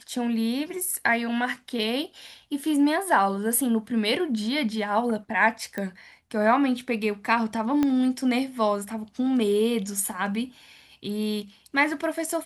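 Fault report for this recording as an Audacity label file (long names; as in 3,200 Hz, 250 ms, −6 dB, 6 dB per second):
5.780000	5.780000	click −18 dBFS
7.830000	7.830000	click −12 dBFS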